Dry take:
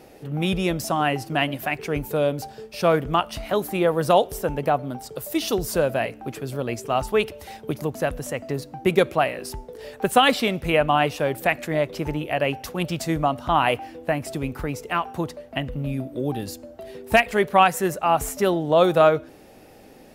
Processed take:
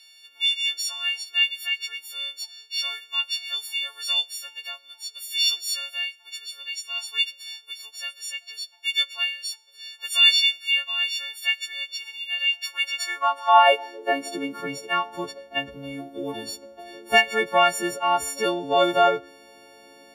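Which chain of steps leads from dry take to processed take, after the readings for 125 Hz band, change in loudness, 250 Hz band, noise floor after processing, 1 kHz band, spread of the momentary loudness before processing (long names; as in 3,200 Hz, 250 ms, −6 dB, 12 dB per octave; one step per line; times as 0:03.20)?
below −20 dB, 0.0 dB, −10.5 dB, −52 dBFS, −1.5 dB, 13 LU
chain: every partial snapped to a pitch grid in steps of 4 semitones
three-way crossover with the lows and the highs turned down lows −18 dB, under 250 Hz, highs −16 dB, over 6,000 Hz
high-pass filter sweep 3,400 Hz → 66 Hz, 0:12.42–0:15.34
level −3 dB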